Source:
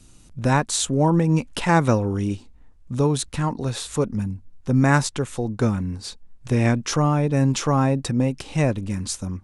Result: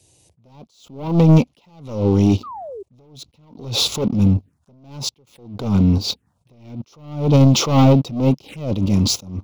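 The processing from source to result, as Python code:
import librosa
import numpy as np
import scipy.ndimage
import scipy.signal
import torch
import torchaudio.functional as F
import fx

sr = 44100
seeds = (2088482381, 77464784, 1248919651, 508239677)

p1 = fx.recorder_agc(x, sr, target_db=-7.0, rise_db_per_s=9.3, max_gain_db=30)
p2 = scipy.signal.sosfilt(scipy.signal.butter(4, 85.0, 'highpass', fs=sr, output='sos'), p1)
p3 = fx.peak_eq(p2, sr, hz=650.0, db=2.5, octaves=2.0)
p4 = fx.level_steps(p3, sr, step_db=15)
p5 = p3 + (p4 * 10.0 ** (-0.5 / 20.0))
p6 = fx.leveller(p5, sr, passes=2)
p7 = 10.0 ** (-7.0 / 20.0) * np.tanh(p6 / 10.0 ** (-7.0 / 20.0))
p8 = fx.env_phaser(p7, sr, low_hz=220.0, high_hz=1700.0, full_db=-14.5)
p9 = fx.spec_paint(p8, sr, seeds[0], shape='fall', start_s=2.43, length_s=0.4, low_hz=370.0, high_hz=1300.0, level_db=-32.0)
y = fx.attack_slew(p9, sr, db_per_s=100.0)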